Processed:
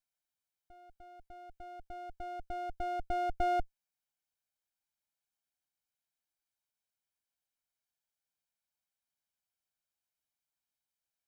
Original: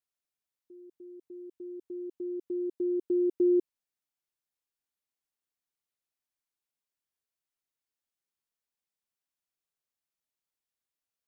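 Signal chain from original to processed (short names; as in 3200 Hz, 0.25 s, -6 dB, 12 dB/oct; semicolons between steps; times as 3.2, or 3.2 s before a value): minimum comb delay 1.3 ms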